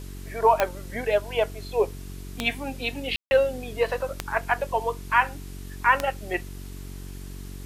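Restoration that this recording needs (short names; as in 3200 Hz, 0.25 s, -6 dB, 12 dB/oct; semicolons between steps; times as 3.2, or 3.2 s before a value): de-click; de-hum 46.7 Hz, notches 9; room tone fill 3.16–3.31; denoiser 30 dB, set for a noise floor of -38 dBFS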